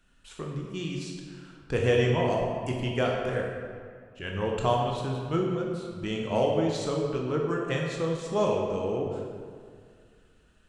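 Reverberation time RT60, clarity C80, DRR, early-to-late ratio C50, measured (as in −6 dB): 2.0 s, 3.5 dB, −1.0 dB, 1.5 dB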